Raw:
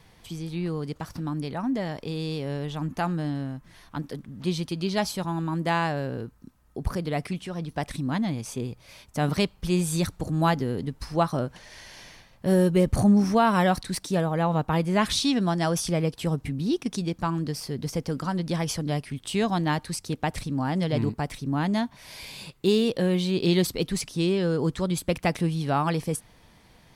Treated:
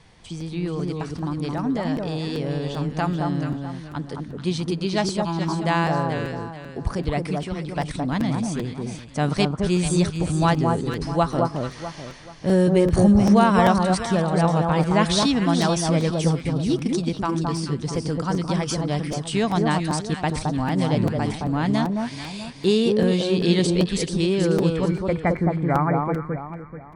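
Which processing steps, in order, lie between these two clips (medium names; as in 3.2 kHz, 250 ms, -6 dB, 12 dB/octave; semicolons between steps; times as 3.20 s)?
brick-wall FIR low-pass 10 kHz, from 24.75 s 2.4 kHz; echo whose repeats swap between lows and highs 217 ms, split 1.3 kHz, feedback 56%, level -2.5 dB; crackling interface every 0.39 s, samples 256, repeat, from 0.40 s; trim +2.5 dB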